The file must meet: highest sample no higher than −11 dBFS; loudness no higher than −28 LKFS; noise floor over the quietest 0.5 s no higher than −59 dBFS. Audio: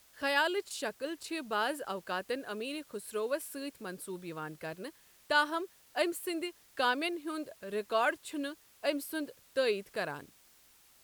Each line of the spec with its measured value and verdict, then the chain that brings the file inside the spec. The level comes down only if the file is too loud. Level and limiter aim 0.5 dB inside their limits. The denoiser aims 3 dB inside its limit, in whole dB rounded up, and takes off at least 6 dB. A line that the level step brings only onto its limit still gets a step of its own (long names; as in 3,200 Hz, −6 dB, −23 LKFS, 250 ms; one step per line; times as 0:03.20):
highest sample −15.0 dBFS: in spec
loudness −35.0 LKFS: in spec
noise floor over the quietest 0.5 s −63 dBFS: in spec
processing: no processing needed